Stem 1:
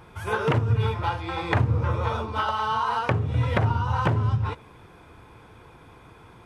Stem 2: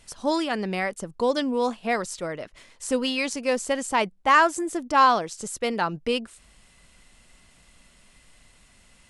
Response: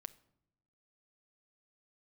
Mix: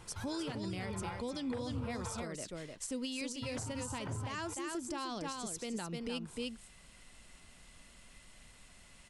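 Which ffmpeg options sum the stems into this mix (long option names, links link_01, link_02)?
-filter_complex "[0:a]volume=-8dB,asplit=3[link_01][link_02][link_03];[link_01]atrim=end=2.24,asetpts=PTS-STARTPTS,afade=type=out:start_time=2.236:duration=0.004:curve=hsin[link_04];[link_02]atrim=start=2.24:end=3.42,asetpts=PTS-STARTPTS,volume=0[link_05];[link_03]atrim=start=3.42,asetpts=PTS-STARTPTS,afade=type=in:duration=0.004:curve=hsin[link_06];[link_04][link_05][link_06]concat=n=3:v=0:a=1[link_07];[1:a]acrossover=split=350|3000[link_08][link_09][link_10];[link_09]acompressor=threshold=-57dB:ratio=1.5[link_11];[link_08][link_11][link_10]amix=inputs=3:normalize=0,volume=-3dB,asplit=3[link_12][link_13][link_14];[link_13]volume=-5.5dB[link_15];[link_14]apad=whole_len=284493[link_16];[link_07][link_16]sidechaincompress=threshold=-40dB:ratio=8:attack=16:release=109[link_17];[link_15]aecho=0:1:303:1[link_18];[link_17][link_12][link_18]amix=inputs=3:normalize=0,alimiter=level_in=6dB:limit=-24dB:level=0:latency=1:release=303,volume=-6dB"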